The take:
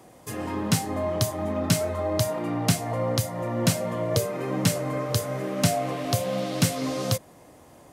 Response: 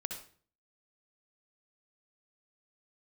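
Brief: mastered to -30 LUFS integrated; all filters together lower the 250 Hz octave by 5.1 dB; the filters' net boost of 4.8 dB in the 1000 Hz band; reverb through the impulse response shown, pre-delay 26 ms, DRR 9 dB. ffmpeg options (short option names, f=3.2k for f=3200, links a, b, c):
-filter_complex "[0:a]equalizer=f=250:t=o:g=-8,equalizer=f=1k:t=o:g=7,asplit=2[a][b];[1:a]atrim=start_sample=2205,adelay=26[c];[b][c]afir=irnorm=-1:irlink=0,volume=-9.5dB[d];[a][d]amix=inputs=2:normalize=0,volume=-4dB"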